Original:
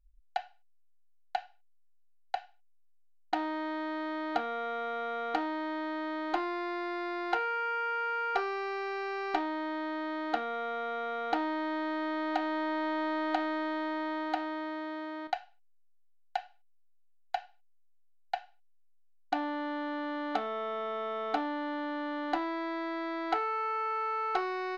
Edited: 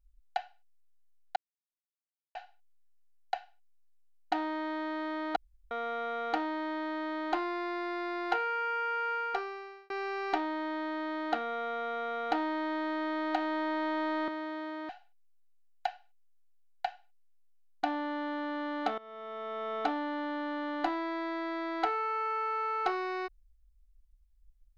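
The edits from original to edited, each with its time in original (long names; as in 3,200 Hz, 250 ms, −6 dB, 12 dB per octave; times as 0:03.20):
0:01.36: splice in silence 0.99 s
0:04.37–0:04.72: fill with room tone
0:08.13–0:08.91: fade out
0:13.29–0:14.63: remove
0:15.24–0:16.38: remove
0:20.47–0:21.24: fade in, from −18.5 dB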